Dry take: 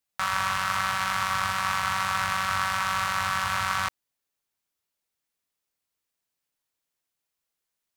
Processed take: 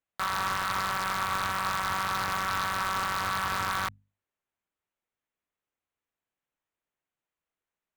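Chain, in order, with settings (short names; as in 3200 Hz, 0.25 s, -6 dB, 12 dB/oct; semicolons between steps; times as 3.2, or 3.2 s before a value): Wiener smoothing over 9 samples; wavefolder -20.5 dBFS; notches 50/100/150/200/250 Hz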